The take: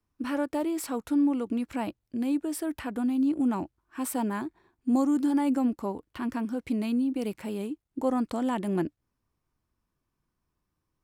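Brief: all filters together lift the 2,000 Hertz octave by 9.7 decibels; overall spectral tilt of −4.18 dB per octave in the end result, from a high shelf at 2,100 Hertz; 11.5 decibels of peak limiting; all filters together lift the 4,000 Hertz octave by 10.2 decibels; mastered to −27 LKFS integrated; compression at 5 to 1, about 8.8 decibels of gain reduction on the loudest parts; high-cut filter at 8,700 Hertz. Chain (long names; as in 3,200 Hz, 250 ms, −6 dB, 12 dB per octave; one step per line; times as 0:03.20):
low-pass filter 8,700 Hz
parametric band 2,000 Hz +8.5 dB
high-shelf EQ 2,100 Hz +5 dB
parametric band 4,000 Hz +5.5 dB
downward compressor 5 to 1, threshold −30 dBFS
level +10.5 dB
brickwall limiter −19 dBFS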